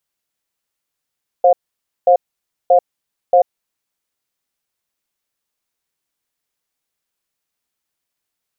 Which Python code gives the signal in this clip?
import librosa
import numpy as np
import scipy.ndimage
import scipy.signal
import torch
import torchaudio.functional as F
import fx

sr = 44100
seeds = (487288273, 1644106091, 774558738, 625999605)

y = fx.cadence(sr, length_s=2.45, low_hz=531.0, high_hz=711.0, on_s=0.09, off_s=0.54, level_db=-9.5)